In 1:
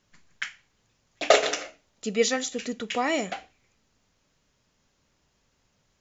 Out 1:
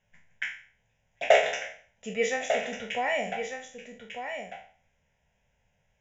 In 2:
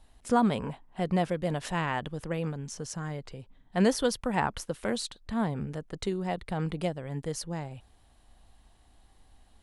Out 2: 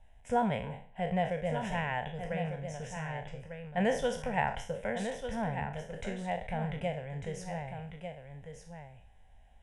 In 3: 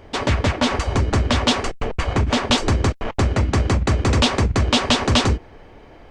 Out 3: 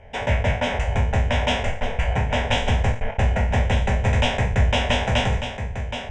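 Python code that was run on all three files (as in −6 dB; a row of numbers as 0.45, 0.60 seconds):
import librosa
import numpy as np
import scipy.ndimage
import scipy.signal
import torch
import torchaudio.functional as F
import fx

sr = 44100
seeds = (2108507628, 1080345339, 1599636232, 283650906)

y = fx.spec_trails(x, sr, decay_s=0.45)
y = scipy.signal.sosfilt(scipy.signal.butter(2, 5500.0, 'lowpass', fs=sr, output='sos'), y)
y = fx.fixed_phaser(y, sr, hz=1200.0, stages=6)
y = y + 10.0 ** (-8.0 / 20.0) * np.pad(y, (int(1197 * sr / 1000.0), 0))[:len(y)]
y = y * librosa.db_to_amplitude(-1.5)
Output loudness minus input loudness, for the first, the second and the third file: −2.0, −4.0, −2.5 LU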